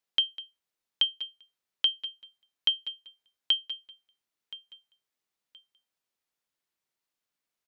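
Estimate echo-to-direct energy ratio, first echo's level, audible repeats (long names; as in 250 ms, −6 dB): −17.5 dB, −18.0 dB, 2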